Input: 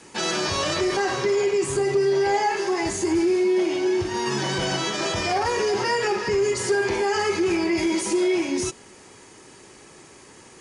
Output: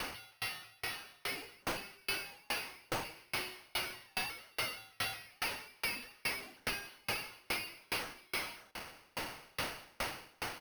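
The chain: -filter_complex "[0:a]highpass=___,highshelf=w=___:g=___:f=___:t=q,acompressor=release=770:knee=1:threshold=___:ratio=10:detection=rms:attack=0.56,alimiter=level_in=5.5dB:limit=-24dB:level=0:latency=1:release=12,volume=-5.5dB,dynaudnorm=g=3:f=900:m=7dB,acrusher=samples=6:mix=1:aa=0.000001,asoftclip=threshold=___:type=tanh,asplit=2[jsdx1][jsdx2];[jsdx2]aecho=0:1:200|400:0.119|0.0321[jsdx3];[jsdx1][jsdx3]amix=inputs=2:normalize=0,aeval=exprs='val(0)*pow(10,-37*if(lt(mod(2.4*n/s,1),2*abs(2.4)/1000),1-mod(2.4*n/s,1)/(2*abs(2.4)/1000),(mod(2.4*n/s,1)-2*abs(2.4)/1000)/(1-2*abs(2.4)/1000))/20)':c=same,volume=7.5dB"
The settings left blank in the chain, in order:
1.3k, 3, 8.5, 3.5k, -28dB, -37.5dB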